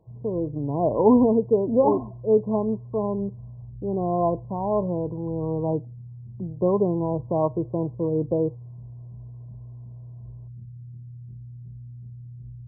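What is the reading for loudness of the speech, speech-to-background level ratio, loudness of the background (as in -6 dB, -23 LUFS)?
-24.5 LUFS, 17.0 dB, -41.5 LUFS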